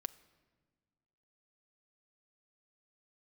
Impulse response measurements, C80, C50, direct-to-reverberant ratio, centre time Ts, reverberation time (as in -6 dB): 20.0 dB, 18.5 dB, 10.5 dB, 3 ms, not exponential